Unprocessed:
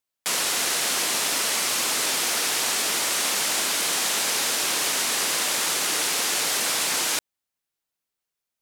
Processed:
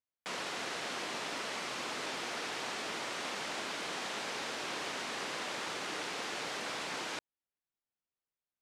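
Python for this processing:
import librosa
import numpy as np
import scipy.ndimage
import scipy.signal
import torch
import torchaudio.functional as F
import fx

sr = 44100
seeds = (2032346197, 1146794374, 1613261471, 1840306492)

y = fx.spacing_loss(x, sr, db_at_10k=22)
y = y * 10.0 ** (-7.0 / 20.0)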